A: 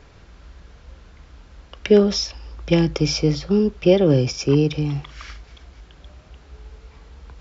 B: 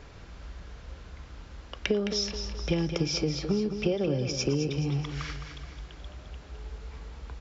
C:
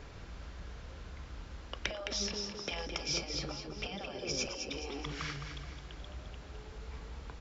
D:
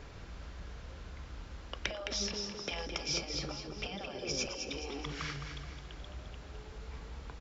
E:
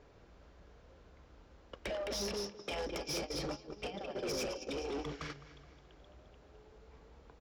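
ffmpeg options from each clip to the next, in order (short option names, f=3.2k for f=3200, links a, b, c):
-filter_complex "[0:a]acompressor=threshold=-25dB:ratio=6,asplit=2[a][b];[b]aecho=0:1:213|426|639|852|1065:0.376|0.173|0.0795|0.0366|0.0168[c];[a][c]amix=inputs=2:normalize=0"
-af "afftfilt=real='re*lt(hypot(re,im),0.126)':imag='im*lt(hypot(re,im),0.126)':win_size=1024:overlap=0.75,volume=-1dB"
-af "aecho=1:1:282:0.0944"
-af "equalizer=f=480:w=0.58:g=9.5,agate=range=-15dB:threshold=-34dB:ratio=16:detection=peak,asoftclip=type=tanh:threshold=-33.5dB"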